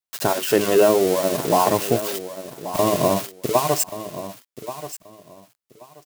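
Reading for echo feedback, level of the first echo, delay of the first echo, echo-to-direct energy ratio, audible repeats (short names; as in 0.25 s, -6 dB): 21%, -13.0 dB, 1.131 s, -13.0 dB, 2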